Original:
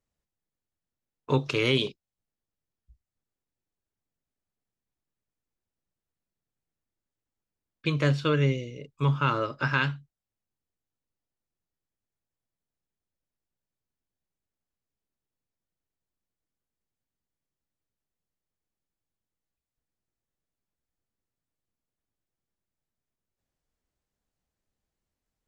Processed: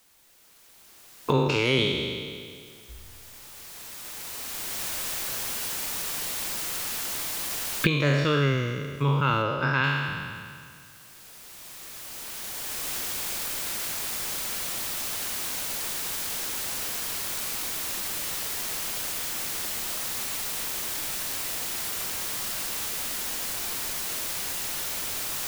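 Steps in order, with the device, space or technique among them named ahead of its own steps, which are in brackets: spectral sustain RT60 1.54 s; cheap recorder with automatic gain (white noise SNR 28 dB; recorder AGC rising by 10 dB/s); 9.42–9.84 s: treble shelf 5.8 kHz -8 dB; trim -1 dB

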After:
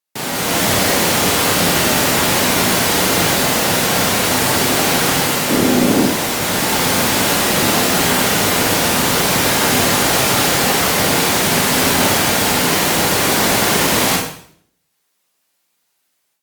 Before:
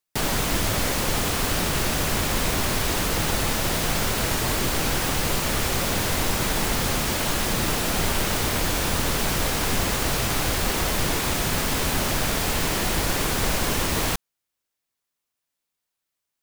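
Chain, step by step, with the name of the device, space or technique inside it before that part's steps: 5.50–6.06 s: peaking EQ 280 Hz +14.5 dB 1.4 oct; far-field microphone of a smart speaker (reverberation RT60 0.60 s, pre-delay 24 ms, DRR -0.5 dB; high-pass 150 Hz 12 dB/octave; level rider gain up to 14 dB; trim -1 dB; Opus 48 kbps 48 kHz)

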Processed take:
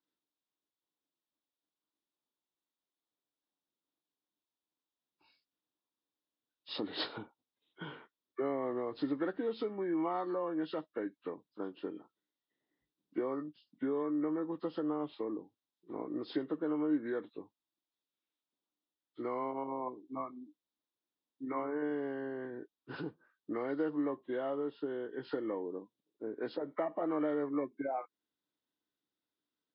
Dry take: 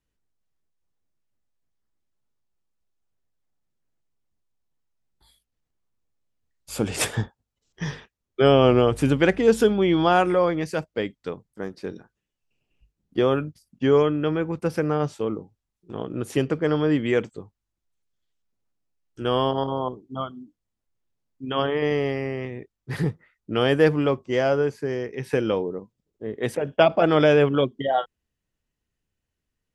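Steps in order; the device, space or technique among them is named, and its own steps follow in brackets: hearing aid with frequency lowering (knee-point frequency compression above 1 kHz 1.5:1; compression 3:1, threshold -29 dBFS, peak gain reduction 13 dB; cabinet simulation 270–5300 Hz, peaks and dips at 300 Hz +10 dB, 1 kHz +5 dB, 2.2 kHz -7 dB, 3.6 kHz +6 dB); trim -7.5 dB

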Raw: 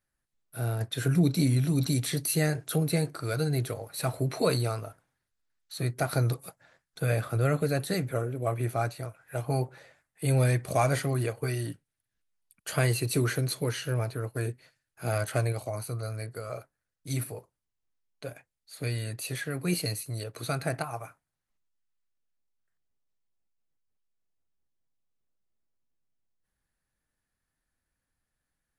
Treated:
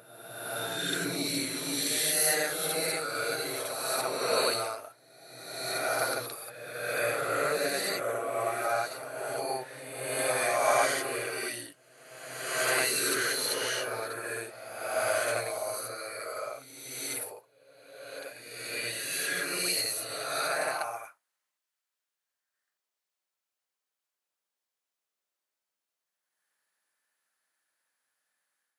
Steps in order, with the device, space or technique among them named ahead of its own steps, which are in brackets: ghost voice (reverse; reverberation RT60 1.6 s, pre-delay 42 ms, DRR -5 dB; reverse; high-pass 680 Hz 12 dB/octave)

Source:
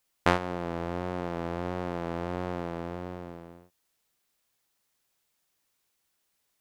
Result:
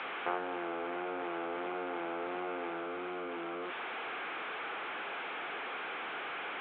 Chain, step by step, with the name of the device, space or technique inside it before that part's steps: digital answering machine (band-pass 370–3100 Hz; one-bit delta coder 16 kbps, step -27.5 dBFS; cabinet simulation 420–3300 Hz, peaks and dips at 590 Hz -9 dB, 990 Hz -7 dB, 1.9 kHz -9 dB, 2.8 kHz -7 dB)

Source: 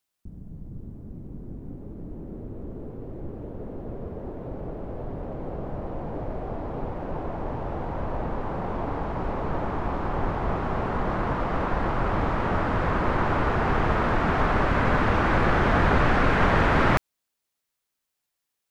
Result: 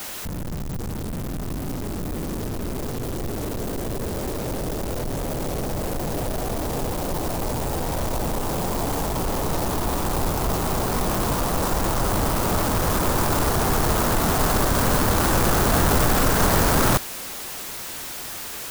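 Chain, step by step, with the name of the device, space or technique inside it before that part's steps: early CD player with a faulty converter (jump at every zero crossing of -25 dBFS; sampling jitter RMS 0.1 ms)

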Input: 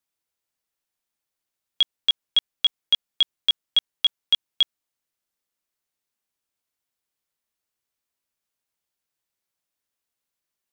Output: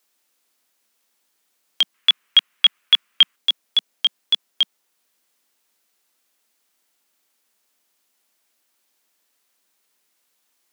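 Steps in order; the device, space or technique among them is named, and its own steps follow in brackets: noise-reduction cassette on a plain deck (tape noise reduction on one side only encoder only; wow and flutter; white noise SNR 42 dB); steep high-pass 190 Hz 36 dB/octave; 1.94–3.36 s: high-order bell 1.8 kHz +11 dB; trim +1 dB

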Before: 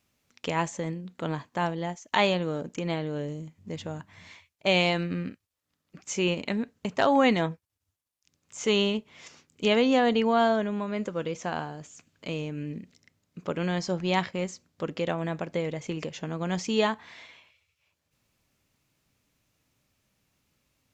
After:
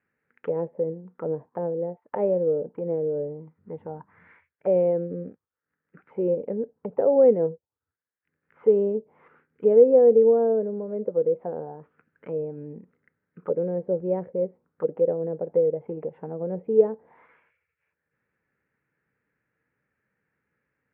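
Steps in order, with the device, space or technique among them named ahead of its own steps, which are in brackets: envelope filter bass rig (touch-sensitive low-pass 540–1700 Hz down, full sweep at -27 dBFS; cabinet simulation 90–2400 Hz, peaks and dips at 100 Hz -7 dB, 270 Hz -3 dB, 460 Hz +8 dB, 660 Hz -8 dB, 1.1 kHz -7 dB); trim -4 dB

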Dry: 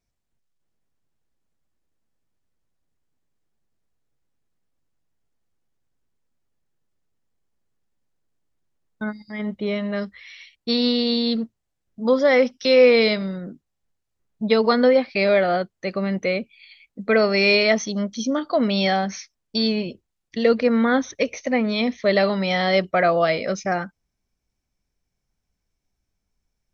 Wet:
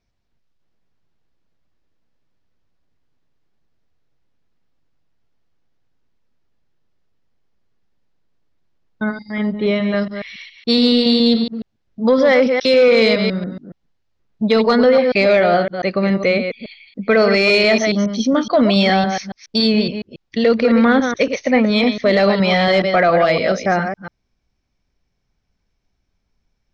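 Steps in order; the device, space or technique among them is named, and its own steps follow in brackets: chunks repeated in reverse 140 ms, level -8 dB; low-pass 5.4 kHz 24 dB/octave; soft clipper into limiter (saturation -7 dBFS, distortion -23 dB; peak limiter -13 dBFS, peak gain reduction 5 dB); trim +7 dB

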